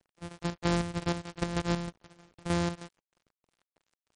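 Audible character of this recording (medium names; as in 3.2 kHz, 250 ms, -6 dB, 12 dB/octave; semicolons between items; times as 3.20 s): a buzz of ramps at a fixed pitch in blocks of 256 samples; chopped level 3.2 Hz, depth 60%, duty 60%; a quantiser's noise floor 10-bit, dither none; MP3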